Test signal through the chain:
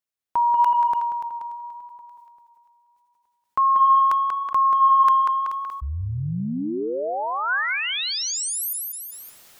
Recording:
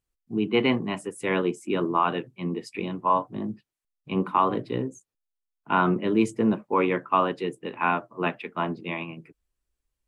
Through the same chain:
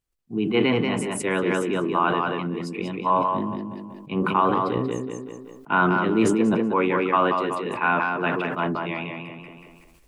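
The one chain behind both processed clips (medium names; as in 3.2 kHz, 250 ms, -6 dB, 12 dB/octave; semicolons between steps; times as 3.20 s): dynamic bell 1.5 kHz, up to +6 dB, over -46 dBFS, Q 6.3; on a send: tape echo 187 ms, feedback 27%, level -4 dB, low-pass 5.2 kHz; on the sum: decay stretcher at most 26 dB/s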